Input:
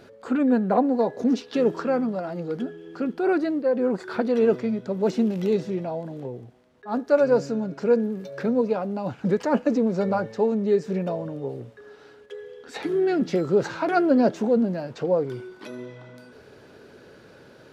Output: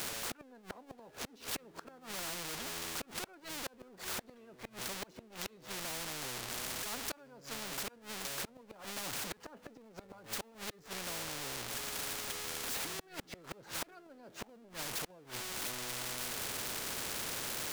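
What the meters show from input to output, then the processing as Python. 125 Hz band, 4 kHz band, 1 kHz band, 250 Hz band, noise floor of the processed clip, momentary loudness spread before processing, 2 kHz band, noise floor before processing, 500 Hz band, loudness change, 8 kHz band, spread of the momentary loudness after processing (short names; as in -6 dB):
-18.5 dB, +5.0 dB, -15.0 dB, -27.0 dB, -61 dBFS, 16 LU, -6.0 dB, -50 dBFS, -25.5 dB, -15.5 dB, n/a, 13 LU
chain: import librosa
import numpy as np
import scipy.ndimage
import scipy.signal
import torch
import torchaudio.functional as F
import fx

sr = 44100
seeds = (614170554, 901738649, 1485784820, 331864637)

y = x + 0.5 * 10.0 ** (-29.5 / 20.0) * np.sign(x)
y = fx.gate_flip(y, sr, shuts_db=-15.0, range_db=-35)
y = fx.spectral_comp(y, sr, ratio=4.0)
y = F.gain(torch.from_numpy(y), -7.5).numpy()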